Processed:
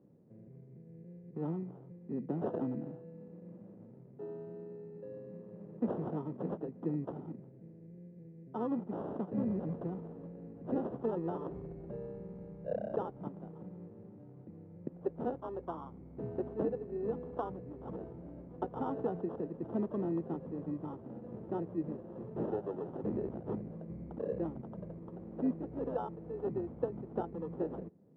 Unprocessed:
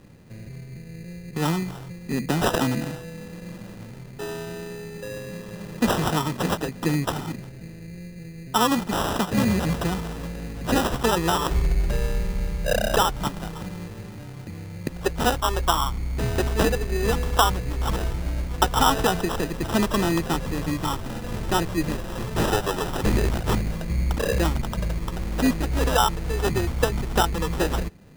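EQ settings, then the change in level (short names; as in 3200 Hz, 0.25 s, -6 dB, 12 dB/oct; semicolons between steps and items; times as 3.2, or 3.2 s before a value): Butterworth band-pass 260 Hz, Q 0.66; low shelf 270 Hz -8.5 dB; -6.5 dB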